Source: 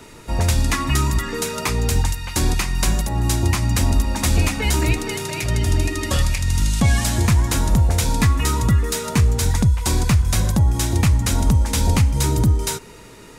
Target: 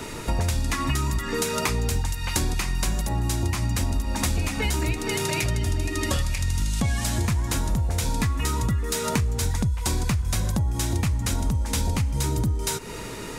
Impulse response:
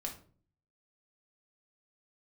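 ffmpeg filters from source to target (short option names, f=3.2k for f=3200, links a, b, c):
-af "acompressor=threshold=-30dB:ratio=6,volume=7.5dB"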